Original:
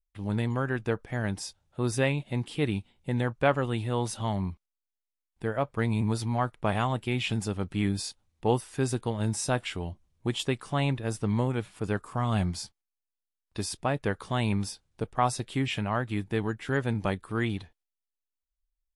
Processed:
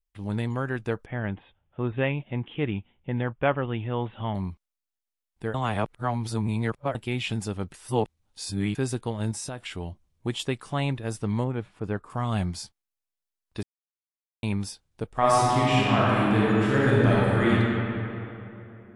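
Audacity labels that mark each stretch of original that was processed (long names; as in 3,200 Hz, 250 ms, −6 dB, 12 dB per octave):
1.060000	4.350000	Butterworth low-pass 3,400 Hz 96 dB per octave
5.540000	6.950000	reverse
7.740000	8.750000	reverse
9.310000	9.770000	downward compressor 5 to 1, threshold −31 dBFS
11.440000	12.100000	low-pass filter 1,600 Hz 6 dB per octave
13.630000	14.430000	silence
15.070000	17.520000	thrown reverb, RT60 3 s, DRR −7.5 dB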